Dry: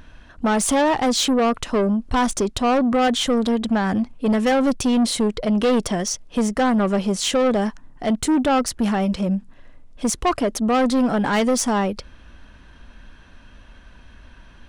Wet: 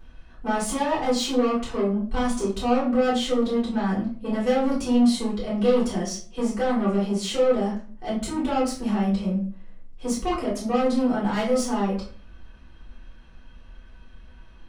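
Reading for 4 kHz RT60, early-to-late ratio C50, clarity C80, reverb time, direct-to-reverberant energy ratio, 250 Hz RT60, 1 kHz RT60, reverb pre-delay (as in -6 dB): 0.30 s, 5.5 dB, 11.5 dB, 0.45 s, -8.5 dB, 0.55 s, 0.40 s, 3 ms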